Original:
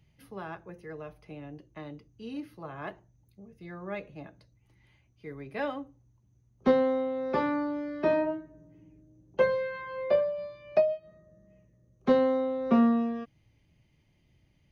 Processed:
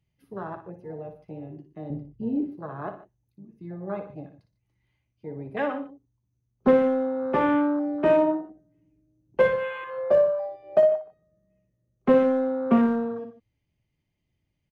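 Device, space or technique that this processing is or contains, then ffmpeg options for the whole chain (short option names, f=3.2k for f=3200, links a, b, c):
parallel distortion: -filter_complex "[0:a]afwtdn=0.0141,asettb=1/sr,asplit=3[a][b][c];[a]atrim=end=1.904[d];[b]atrim=start=1.9:end=2.52,asetpts=PTS-STARTPTS,afade=t=in:d=0.004:c=qsin,afade=t=out:st=0.616:d=0.004:c=qsin,aemphasis=mode=reproduction:type=riaa[e];[c]atrim=start=2.516[f];[d][e]acrossfade=d=0.004:c1=hsin:c2=qsin[g];[g][f]acrossfade=d=0.004:c1=qsin:c2=hsin,asplit=2[h][i];[i]asoftclip=type=hard:threshold=-24dB,volume=-11dB[j];[h][j]amix=inputs=2:normalize=0,aecho=1:1:58|120|148:0.355|0.106|0.119,volume=3dB"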